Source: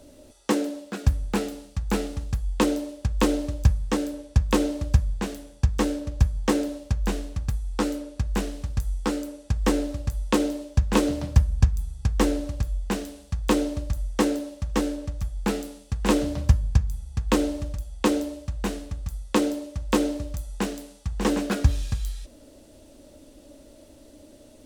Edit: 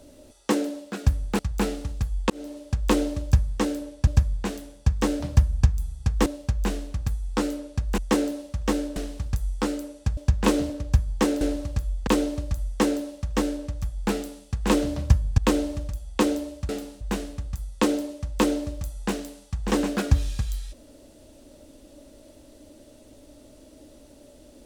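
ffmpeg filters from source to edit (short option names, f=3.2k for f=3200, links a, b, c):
-filter_complex "[0:a]asplit=15[a][b][c][d][e][f][g][h][i][j][k][l][m][n][o];[a]atrim=end=1.392[p];[b]atrim=start=1.708:end=2.62,asetpts=PTS-STARTPTS,afade=t=out:st=0.908:d=0.004:c=hsin[q];[c]atrim=start=2.62:end=4.392,asetpts=PTS-STARTPTS,afade=t=in:d=0.41[r];[d]atrim=start=4.838:end=5.972[s];[e]atrim=start=11.188:end=12.252[t];[f]atrim=start=6.678:end=8.402[u];[g]atrim=start=14.058:end=15.042[v];[h]atrim=start=8.398:end=9.612[w];[i]atrim=start=10.658:end=11.192[x];[j]atrim=start=5.968:end=6.682[y];[k]atrim=start=12.248:end=12.912[z];[l]atrim=start=13.458:end=16.772[aa];[m]atrim=start=17.228:end=18.542[ab];[n]atrim=start=1.388:end=1.712[ac];[o]atrim=start=18.538[ad];[q][r]concat=n=2:v=0:a=1[ae];[p][ae]acrossfade=d=0.004:c1=hsin:c2=hsin[af];[af][s]acrossfade=d=0.004:c1=hsin:c2=hsin[ag];[ag][t]acrossfade=d=0.004:c1=hsin:c2=hsin[ah];[ah][u]acrossfade=d=0.004:c1=hsin:c2=hsin[ai];[ai][v]acrossfade=d=0.004:c1=hsin:c2=hsin[aj];[aj][w]acrossfade=d=0.004:c1=hsin:c2=hsin[ak];[ak][x]acrossfade=d=0.004:c1=hsin:c2=hsin[al];[al][y]acrossfade=d=0.004:c1=hsin:c2=hsin[am];[am][z]acrossfade=d=0.004:c1=hsin:c2=hsin[an];[an][aa]acrossfade=d=0.004:c1=hsin:c2=hsin[ao];[ao][ab]acrossfade=d=0.004:c1=hsin:c2=hsin[ap];[ap][ac]acrossfade=d=0.004:c1=hsin:c2=hsin[aq];[aq][ad]acrossfade=d=0.004:c1=hsin:c2=hsin"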